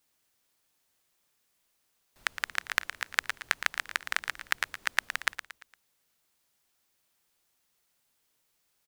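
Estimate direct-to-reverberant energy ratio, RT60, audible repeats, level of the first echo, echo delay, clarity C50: no reverb audible, no reverb audible, 4, −11.0 dB, 115 ms, no reverb audible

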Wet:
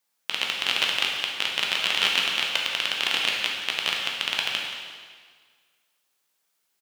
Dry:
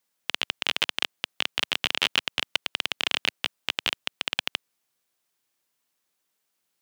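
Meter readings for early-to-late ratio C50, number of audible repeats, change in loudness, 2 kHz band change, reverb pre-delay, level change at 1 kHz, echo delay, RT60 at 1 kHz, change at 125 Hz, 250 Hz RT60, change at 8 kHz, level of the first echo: 1.0 dB, 1, +3.5 dB, +3.5 dB, 6 ms, +3.5 dB, 177 ms, 1.7 s, can't be measured, 1.8 s, +3.5 dB, −12.0 dB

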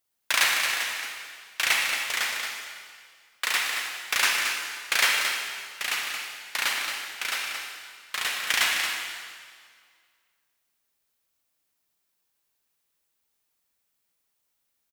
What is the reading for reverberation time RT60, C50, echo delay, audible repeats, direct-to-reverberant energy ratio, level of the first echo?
1.9 s, 0.0 dB, 224 ms, 1, −0.5 dB, −7.0 dB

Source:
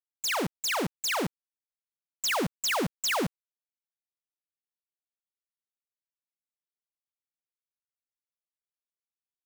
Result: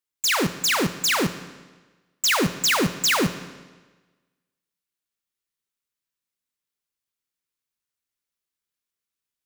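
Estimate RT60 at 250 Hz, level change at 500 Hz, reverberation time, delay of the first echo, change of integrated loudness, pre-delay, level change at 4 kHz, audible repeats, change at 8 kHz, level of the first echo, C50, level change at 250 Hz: 1.2 s, +5.5 dB, 1.3 s, no echo audible, +7.5 dB, 8 ms, +8.5 dB, no echo audible, +8.5 dB, no echo audible, 12.5 dB, +8.0 dB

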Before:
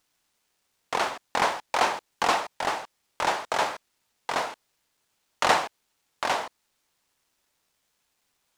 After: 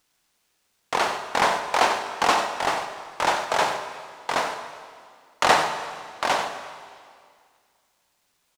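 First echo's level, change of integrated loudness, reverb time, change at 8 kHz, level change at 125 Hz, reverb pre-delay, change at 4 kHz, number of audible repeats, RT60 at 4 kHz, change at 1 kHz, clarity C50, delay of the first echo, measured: −11.0 dB, +3.0 dB, 2.1 s, +4.0 dB, +4.5 dB, 11 ms, +4.0 dB, 1, 2.0 s, +4.0 dB, 7.0 dB, 92 ms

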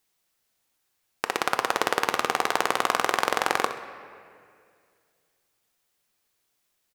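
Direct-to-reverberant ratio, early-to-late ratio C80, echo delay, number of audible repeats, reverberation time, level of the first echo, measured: 7.0 dB, 11.5 dB, 65 ms, 2, 2.2 s, −12.5 dB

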